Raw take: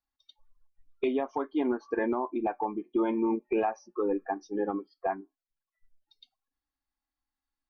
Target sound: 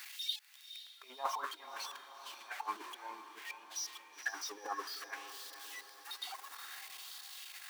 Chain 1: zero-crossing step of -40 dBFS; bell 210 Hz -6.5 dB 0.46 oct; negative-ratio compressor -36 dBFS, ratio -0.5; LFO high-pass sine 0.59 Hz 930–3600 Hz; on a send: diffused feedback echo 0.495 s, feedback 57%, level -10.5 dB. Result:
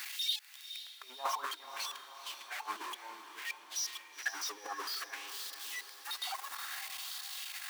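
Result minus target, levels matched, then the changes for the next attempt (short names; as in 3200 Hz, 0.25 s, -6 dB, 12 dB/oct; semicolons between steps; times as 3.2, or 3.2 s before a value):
zero-crossing step: distortion +7 dB
change: zero-crossing step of -47.5 dBFS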